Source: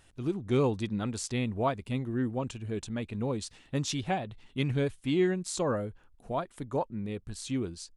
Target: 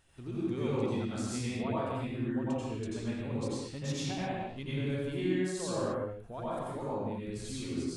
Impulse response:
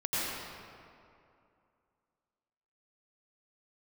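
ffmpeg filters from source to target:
-filter_complex "[0:a]acompressor=threshold=-41dB:ratio=1.5[a];[1:a]atrim=start_sample=2205,afade=t=out:st=0.41:d=0.01,atrim=end_sample=18522[b];[a][b]afir=irnorm=-1:irlink=0,volume=-5.5dB"

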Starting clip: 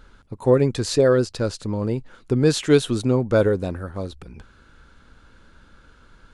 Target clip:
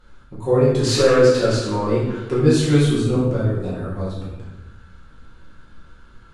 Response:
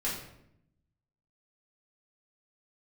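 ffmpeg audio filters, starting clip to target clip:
-filter_complex "[0:a]asettb=1/sr,asplit=3[a][b][c];[a]atrim=end=0.834[d];[b]atrim=start=0.83:end=2.4,asetpts=PTS-STARTPTS,afade=t=in:d=0.004:c=qsin,afade=t=out:st=1.566:d=0.004:c=qsin,asplit=2[e][f];[f]highpass=f=720:p=1,volume=17dB,asoftclip=type=tanh:threshold=-6.5dB[g];[e][g]amix=inputs=2:normalize=0,lowpass=f=4.2k:p=1,volume=-6dB[h];[c]atrim=start=2.396[i];[d][h]acrossfade=d=0.004:c1=hsin:c2=qsin[j];[j][i]acrossfade=d=0.004:c1=qsin:c2=hsin,asettb=1/sr,asplit=3[k][l][m];[k]atrim=end=3.154[n];[l]atrim=start=3.15:end=3.81,asetpts=PTS-STARTPTS,afade=t=in:d=0.004:c=qsin,afade=t=out:st=0.656:d=0.004:c=qsin,acrossover=split=130[o][p];[p]acompressor=threshold=-23dB:ratio=6[q];[o][q]amix=inputs=2:normalize=0[r];[m]atrim=start=3.806[s];[n][r]acrossfade=d=0.004:c1=hsin:c2=qsin[t];[t][s]acrossfade=d=0.004:c1=qsin:c2=hsin[u];[1:a]atrim=start_sample=2205,asetrate=28665,aresample=44100[v];[u][v]afir=irnorm=-1:irlink=0,volume=-7.5dB"

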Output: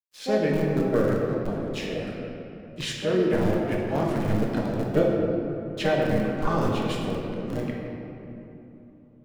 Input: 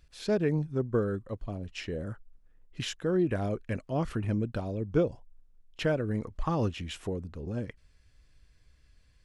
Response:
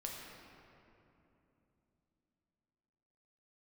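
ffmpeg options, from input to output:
-filter_complex "[0:a]agate=range=-33dB:threshold=-53dB:ratio=3:detection=peak,equalizer=f=2.6k:t=o:w=2.9:g=2.5,asplit=2[a][b];[b]asetrate=55563,aresample=44100,atempo=0.793701,volume=-6dB[c];[a][c]amix=inputs=2:normalize=0,acrossover=split=130|4100[d][e][f];[d]acrusher=bits=3:dc=4:mix=0:aa=0.000001[g];[g][e][f]amix=inputs=3:normalize=0,aeval=exprs='sgn(val(0))*max(abs(val(0))-0.00237,0)':c=same[h];[1:a]atrim=start_sample=2205[i];[h][i]afir=irnorm=-1:irlink=0,volume=5.5dB"

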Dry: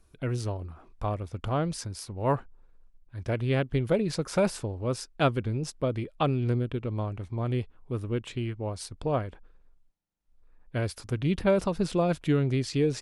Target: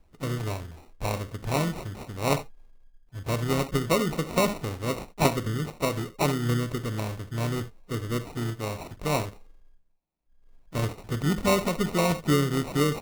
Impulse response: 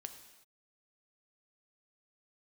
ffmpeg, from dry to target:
-filter_complex "[0:a]asplit=2[a][b];[b]asetrate=55563,aresample=44100,atempo=0.793701,volume=-13dB[c];[a][c]amix=inputs=2:normalize=0[d];[1:a]atrim=start_sample=2205,atrim=end_sample=3969[e];[d][e]afir=irnorm=-1:irlink=0,acrusher=samples=27:mix=1:aa=0.000001,volume=5.5dB"

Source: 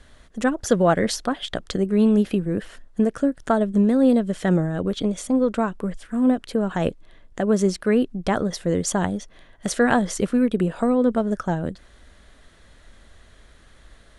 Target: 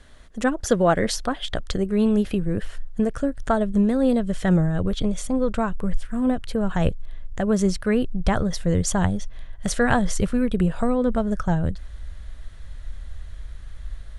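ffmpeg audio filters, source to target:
-af "asubboost=boost=8:cutoff=97"

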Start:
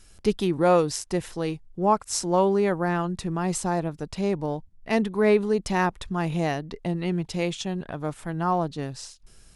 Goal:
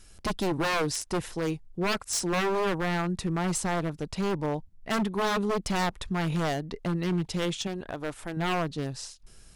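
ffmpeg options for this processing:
-filter_complex "[0:a]aeval=exprs='0.0841*(abs(mod(val(0)/0.0841+3,4)-2)-1)':c=same,asettb=1/sr,asplit=3[a][b][c];[a]atrim=end=7.674[d];[b]atrim=start=7.67:end=8.37,asetpts=PTS-STARTPTS,afade=t=in:d=0.004:c=qsin,afade=t=out:st=0.696:d=0.004:c=qsin,equalizer=f=160:t=o:w=0.69:g=-9.5[e];[c]atrim=start=8.366[f];[d][e]acrossfade=d=0.004:c1=hsin:c2=qsin[g];[g][f]acrossfade=d=0.004:c1=qsin:c2=hsin"

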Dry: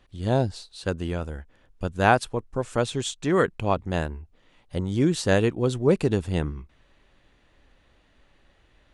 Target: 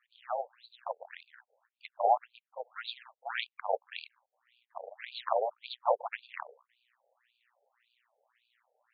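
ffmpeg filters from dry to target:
-af "tremolo=f=120:d=0.947,aeval=exprs='0.473*(cos(1*acos(clip(val(0)/0.473,-1,1)))-cos(1*PI/2))+0.168*(cos(6*acos(clip(val(0)/0.473,-1,1)))-cos(6*PI/2))':c=same,afftfilt=real='re*between(b*sr/1024,600*pow(3400/600,0.5+0.5*sin(2*PI*1.8*pts/sr))/1.41,600*pow(3400/600,0.5+0.5*sin(2*PI*1.8*pts/sr))*1.41)':imag='im*between(b*sr/1024,600*pow(3400/600,0.5+0.5*sin(2*PI*1.8*pts/sr))/1.41,600*pow(3400/600,0.5+0.5*sin(2*PI*1.8*pts/sr))*1.41)':win_size=1024:overlap=0.75"

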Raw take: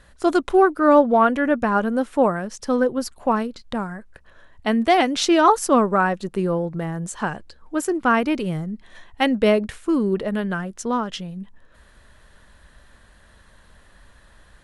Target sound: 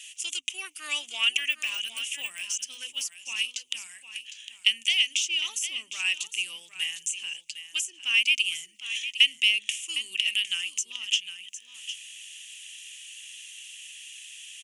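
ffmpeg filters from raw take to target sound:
-filter_complex "[0:a]asettb=1/sr,asplit=3[a][b][c];[a]atrim=end=1.344[d];[b]atrim=start=1.34:end=2.4,asetpts=PTS-STARTPTS,afade=t=in:d=0.004:c=qsin,afade=t=out:st=1.056:d=0.004:c=qsin,deesser=0.9[e];[c]atrim=start=2.396[f];[d][e]acrossfade=d=0.004:c1=hsin:c2=qsin[g];[g][f]acrossfade=d=0.004:c1=qsin:c2=hsin,aexciter=amount=15.8:drive=7.1:freq=2.3k,aderivative,bandreject=f=50:t=h:w=6,bandreject=f=100:t=h:w=6,bandreject=f=150:t=h:w=6,bandreject=f=200:t=h:w=6,bandreject=f=250:t=h:w=6,acrossover=split=430[h][i];[i]acompressor=threshold=-23dB:ratio=5[j];[h][j]amix=inputs=2:normalize=0,firequalizer=gain_entry='entry(100,0);entry(170,-15);entry(280,-14);entry(490,-18);entry(1000,-10);entry(1800,-4);entry(2800,9);entry(4100,-21);entry(6300,-6);entry(12000,-23)':delay=0.05:min_phase=1,asplit=2[k][l];[l]aecho=0:1:757:0.266[m];[k][m]amix=inputs=2:normalize=0,volume=2dB"

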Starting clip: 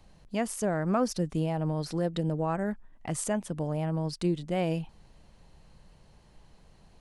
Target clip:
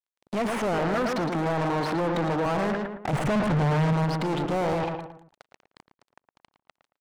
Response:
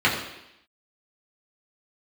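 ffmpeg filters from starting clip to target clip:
-filter_complex "[0:a]acontrast=65,aeval=exprs='(tanh(56.2*val(0)+0.25)-tanh(0.25))/56.2':c=same,asettb=1/sr,asplit=3[a][b][c];[a]atrim=end=3.134[d];[b]atrim=start=3.13:end=3.93,asetpts=PTS-STARTPTS,afade=t=in:d=0.004:c=qsin,afade=t=out:st=0.796:d=0.004:c=qsin,bass=f=250:g=15,treble=f=4k:g=-10[e];[c]atrim=start=3.926[f];[d][e]acrossfade=d=0.004:c1=hsin:c2=qsin[g];[g][f]acrossfade=d=0.004:c1=qsin:c2=hsin,acrusher=bits=5:mix=0:aa=0.5,asettb=1/sr,asplit=3[h][i][j];[h]atrim=end=0.784[k];[i]atrim=start=0.78:end=2.46,asetpts=PTS-STARTPTS,afade=t=in:d=0.004:c=qsin,afade=t=out:st=1.676:d=0.004:c=qsin,highpass=160[l];[j]atrim=start=2.456[m];[k][l]acrossfade=d=0.004:c1=hsin:c2=qsin[n];[n][m]acrossfade=d=0.004:c1=qsin:c2=hsin,asplit=2[o][p];[p]adelay=112,lowpass=f=1.6k:p=1,volume=-8dB,asplit=2[q][r];[r]adelay=112,lowpass=f=1.6k:p=1,volume=0.38,asplit=2[s][t];[t]adelay=112,lowpass=f=1.6k:p=1,volume=0.38,asplit=2[u][v];[v]adelay=112,lowpass=f=1.6k:p=1,volume=0.38[w];[o][q][s][u][w]amix=inputs=5:normalize=0,acrossover=split=2700[x][y];[y]acompressor=threshold=-57dB:ratio=4:attack=1:release=60[z];[x][z]amix=inputs=2:normalize=0,asplit=2[aa][ab];[ab]highpass=f=720:p=1,volume=31dB,asoftclip=type=tanh:threshold=-18.5dB[ac];[aa][ac]amix=inputs=2:normalize=0,lowpass=f=2.1k:p=1,volume=-6dB,volume=1.5dB"

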